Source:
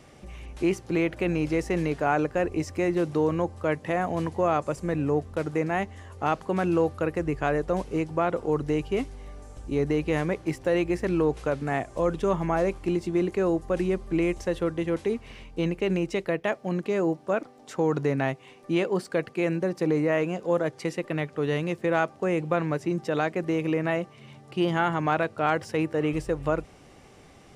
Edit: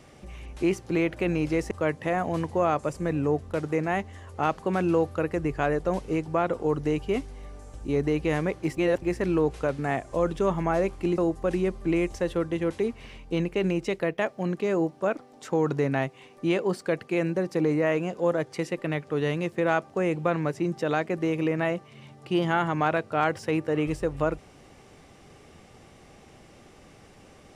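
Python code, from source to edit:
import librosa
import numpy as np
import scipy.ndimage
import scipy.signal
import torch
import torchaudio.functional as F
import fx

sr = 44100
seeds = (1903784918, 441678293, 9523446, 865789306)

y = fx.edit(x, sr, fx.cut(start_s=1.71, length_s=1.83),
    fx.reverse_span(start_s=10.6, length_s=0.25),
    fx.cut(start_s=13.01, length_s=0.43), tone=tone)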